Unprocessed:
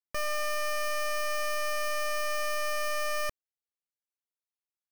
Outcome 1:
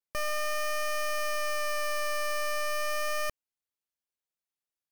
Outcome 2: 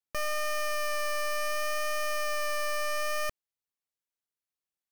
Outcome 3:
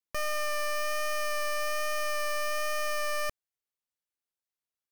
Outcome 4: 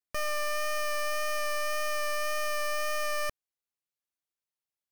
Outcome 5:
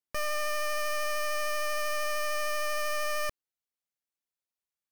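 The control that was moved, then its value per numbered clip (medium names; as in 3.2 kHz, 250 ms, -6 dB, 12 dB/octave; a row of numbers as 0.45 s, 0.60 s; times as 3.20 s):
vibrato, rate: 0.35 Hz, 0.67 Hz, 1.2 Hz, 1.8 Hz, 13 Hz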